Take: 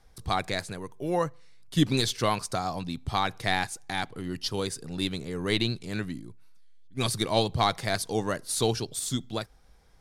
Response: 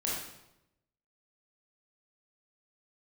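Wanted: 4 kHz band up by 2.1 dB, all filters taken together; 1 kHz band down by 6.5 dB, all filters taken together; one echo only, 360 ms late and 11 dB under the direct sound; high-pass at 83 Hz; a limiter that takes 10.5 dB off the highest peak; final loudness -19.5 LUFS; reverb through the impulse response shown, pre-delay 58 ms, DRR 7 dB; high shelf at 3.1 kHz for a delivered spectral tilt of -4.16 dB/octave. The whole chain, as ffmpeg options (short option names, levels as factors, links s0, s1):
-filter_complex "[0:a]highpass=83,equalizer=f=1000:t=o:g=-9,highshelf=f=3100:g=-5.5,equalizer=f=4000:t=o:g=6.5,alimiter=limit=0.1:level=0:latency=1,aecho=1:1:360:0.282,asplit=2[s0][s1];[1:a]atrim=start_sample=2205,adelay=58[s2];[s1][s2]afir=irnorm=-1:irlink=0,volume=0.237[s3];[s0][s3]amix=inputs=2:normalize=0,volume=4.73"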